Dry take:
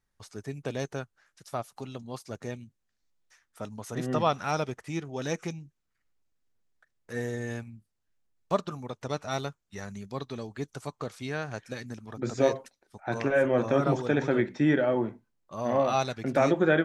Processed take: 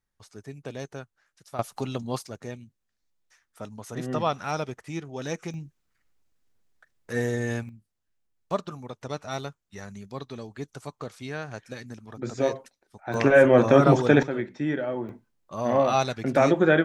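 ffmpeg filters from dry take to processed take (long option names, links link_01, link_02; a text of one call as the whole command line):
ffmpeg -i in.wav -af "asetnsamples=nb_out_samples=441:pad=0,asendcmd='1.59 volume volume 8.5dB;2.27 volume volume -0.5dB;5.54 volume volume 6dB;7.69 volume volume -1dB;13.14 volume volume 8dB;14.23 volume volume -4dB;15.09 volume volume 3.5dB',volume=-3.5dB" out.wav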